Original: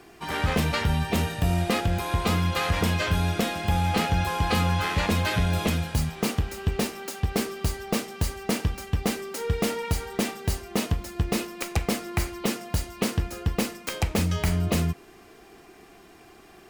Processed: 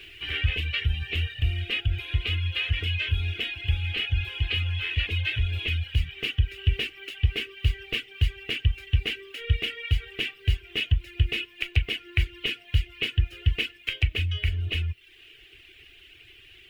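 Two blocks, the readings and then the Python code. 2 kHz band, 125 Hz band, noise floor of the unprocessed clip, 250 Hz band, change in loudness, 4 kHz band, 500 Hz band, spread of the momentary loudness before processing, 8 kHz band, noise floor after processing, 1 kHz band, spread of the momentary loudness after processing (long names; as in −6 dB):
+1.5 dB, 0.0 dB, −51 dBFS, −17.5 dB, −1.0 dB, +4.0 dB, −13.0 dB, 6 LU, −20.0 dB, −53 dBFS, −21.5 dB, 3 LU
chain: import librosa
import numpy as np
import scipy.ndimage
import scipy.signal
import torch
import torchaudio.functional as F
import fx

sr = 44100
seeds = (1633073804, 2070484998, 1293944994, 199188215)

p1 = fx.peak_eq(x, sr, hz=15000.0, db=4.5, octaves=0.77)
p2 = p1 + 0.31 * np.pad(p1, (int(2.7 * sr / 1000.0), 0))[:len(p1)]
p3 = fx.quant_dither(p2, sr, seeds[0], bits=6, dither='triangular')
p4 = p2 + F.gain(torch.from_numpy(p3), -7.0).numpy()
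p5 = fx.rider(p4, sr, range_db=10, speed_s=0.5)
p6 = fx.dereverb_blind(p5, sr, rt60_s=0.7)
p7 = fx.curve_eq(p6, sr, hz=(120.0, 180.0, 270.0, 430.0, 930.0, 1600.0, 2900.0, 4300.0, 6100.0, 14000.0), db=(0, -26, -15, -13, -29, -7, 9, -13, -23, -26))
y = F.gain(torch.from_numpy(p7), -1.5).numpy()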